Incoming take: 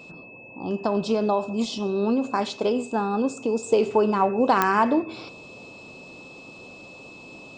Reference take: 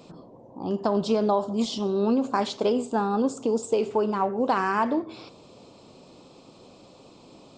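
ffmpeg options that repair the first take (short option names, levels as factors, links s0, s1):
-af "adeclick=t=4,bandreject=f=2600:w=30,asetnsamples=n=441:p=0,asendcmd='3.66 volume volume -4dB',volume=1"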